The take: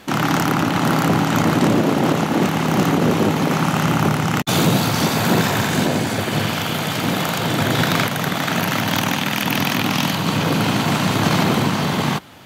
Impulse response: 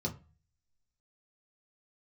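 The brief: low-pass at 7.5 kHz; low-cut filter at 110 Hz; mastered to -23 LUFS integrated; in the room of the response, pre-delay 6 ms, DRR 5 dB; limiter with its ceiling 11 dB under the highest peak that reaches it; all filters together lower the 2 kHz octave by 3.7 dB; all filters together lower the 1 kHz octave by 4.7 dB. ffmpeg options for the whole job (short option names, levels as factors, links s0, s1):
-filter_complex "[0:a]highpass=110,lowpass=7500,equalizer=f=1000:t=o:g=-5.5,equalizer=f=2000:t=o:g=-3,alimiter=limit=0.15:level=0:latency=1,asplit=2[s0][s1];[1:a]atrim=start_sample=2205,adelay=6[s2];[s1][s2]afir=irnorm=-1:irlink=0,volume=0.422[s3];[s0][s3]amix=inputs=2:normalize=0,volume=0.668"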